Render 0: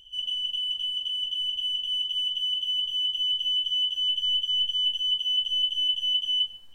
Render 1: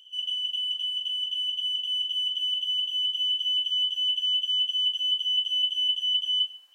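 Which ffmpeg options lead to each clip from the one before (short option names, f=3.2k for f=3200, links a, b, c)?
-af "highpass=830"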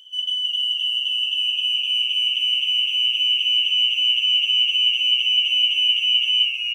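-filter_complex "[0:a]asplit=8[a][b][c][d][e][f][g][h];[b]adelay=317,afreqshift=-120,volume=-6.5dB[i];[c]adelay=634,afreqshift=-240,volume=-11.4dB[j];[d]adelay=951,afreqshift=-360,volume=-16.3dB[k];[e]adelay=1268,afreqshift=-480,volume=-21.1dB[l];[f]adelay=1585,afreqshift=-600,volume=-26dB[m];[g]adelay=1902,afreqshift=-720,volume=-30.9dB[n];[h]adelay=2219,afreqshift=-840,volume=-35.8dB[o];[a][i][j][k][l][m][n][o]amix=inputs=8:normalize=0,volume=6dB"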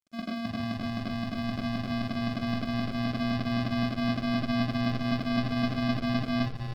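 -af "lowpass=2.2k,aresample=11025,acrusher=samples=12:mix=1:aa=0.000001,aresample=44100,aeval=exprs='sgn(val(0))*max(abs(val(0))-0.00473,0)':c=same,volume=-2dB"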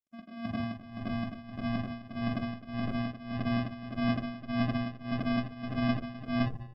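-af "afftdn=nr=15:nf=-43,equalizer=f=4.2k:w=5.9:g=-13.5,tremolo=f=1.7:d=0.85"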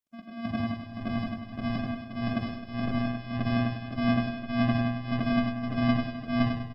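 -af "aecho=1:1:99|198|297|396|495:0.501|0.2|0.0802|0.0321|0.0128,volume=2.5dB"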